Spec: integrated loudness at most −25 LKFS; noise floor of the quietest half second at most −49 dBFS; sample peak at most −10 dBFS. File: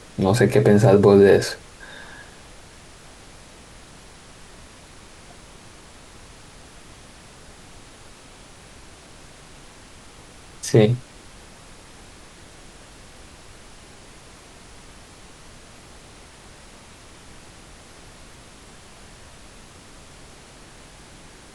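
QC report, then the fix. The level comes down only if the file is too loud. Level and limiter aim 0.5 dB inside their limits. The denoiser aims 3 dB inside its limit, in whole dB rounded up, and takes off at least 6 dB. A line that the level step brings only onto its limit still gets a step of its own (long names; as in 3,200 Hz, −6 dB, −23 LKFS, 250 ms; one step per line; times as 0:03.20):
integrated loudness −16.5 LKFS: out of spec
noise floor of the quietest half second −45 dBFS: out of spec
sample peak −3.5 dBFS: out of spec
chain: level −9 dB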